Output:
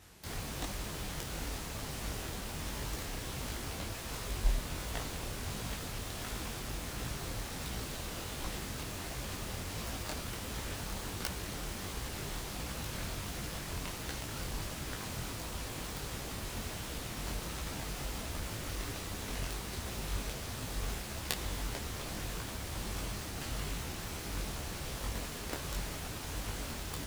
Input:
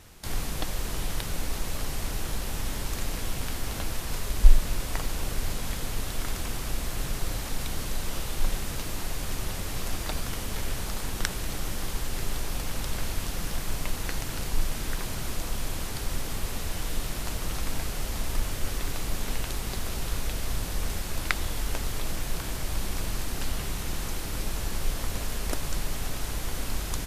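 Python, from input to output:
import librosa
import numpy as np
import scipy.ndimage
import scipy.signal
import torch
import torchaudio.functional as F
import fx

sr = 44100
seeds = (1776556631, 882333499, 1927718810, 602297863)

y = fx.self_delay(x, sr, depth_ms=0.58)
y = scipy.signal.sosfilt(scipy.signal.butter(2, 49.0, 'highpass', fs=sr, output='sos'), y)
y = fx.detune_double(y, sr, cents=49)
y = y * librosa.db_to_amplitude(-1.0)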